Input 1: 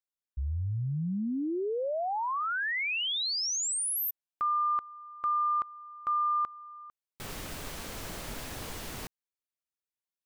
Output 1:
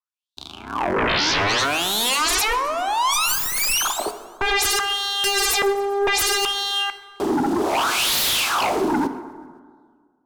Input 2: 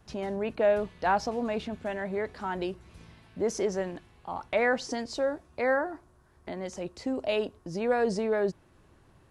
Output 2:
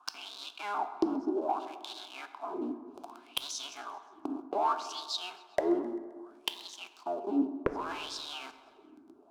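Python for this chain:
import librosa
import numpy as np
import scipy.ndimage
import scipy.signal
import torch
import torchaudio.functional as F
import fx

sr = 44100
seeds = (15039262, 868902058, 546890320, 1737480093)

y = fx.cycle_switch(x, sr, every=3, mode='inverted')
y = fx.highpass(y, sr, hz=220.0, slope=6)
y = fx.high_shelf(y, sr, hz=4800.0, db=10.0)
y = fx.leveller(y, sr, passes=5)
y = fx.gate_flip(y, sr, shuts_db=-14.0, range_db=-33)
y = fx.wah_lfo(y, sr, hz=0.64, low_hz=280.0, high_hz=3900.0, q=7.0)
y = fx.fixed_phaser(y, sr, hz=510.0, stages=6)
y = fx.fold_sine(y, sr, drive_db=18, ceiling_db=-23.0)
y = fx.echo_feedback(y, sr, ms=131, feedback_pct=58, wet_db=-22.0)
y = fx.rev_plate(y, sr, seeds[0], rt60_s=1.8, hf_ratio=0.35, predelay_ms=0, drr_db=9.5)
y = y * 10.0 ** (5.5 / 20.0)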